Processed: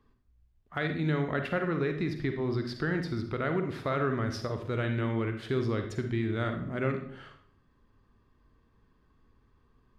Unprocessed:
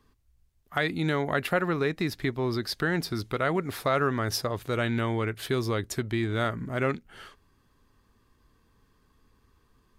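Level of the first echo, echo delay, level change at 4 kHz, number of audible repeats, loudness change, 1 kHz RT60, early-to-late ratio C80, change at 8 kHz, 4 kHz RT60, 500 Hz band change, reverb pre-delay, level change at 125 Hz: none, none, -9.0 dB, none, -3.0 dB, 0.55 s, 12.0 dB, -14.5 dB, 0.50 s, -3.0 dB, 38 ms, -0.5 dB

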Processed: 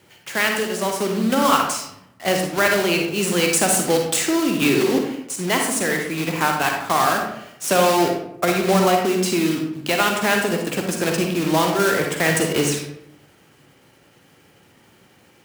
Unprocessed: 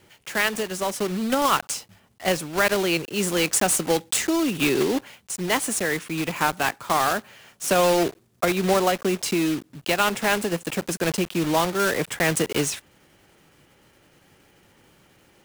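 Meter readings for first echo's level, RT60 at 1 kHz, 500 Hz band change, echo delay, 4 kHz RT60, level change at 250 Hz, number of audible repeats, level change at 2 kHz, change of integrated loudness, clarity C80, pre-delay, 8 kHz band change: none, 0.70 s, +3.5 dB, none, 0.45 s, +4.0 dB, none, +3.5 dB, +3.5 dB, 6.5 dB, 39 ms, +3.0 dB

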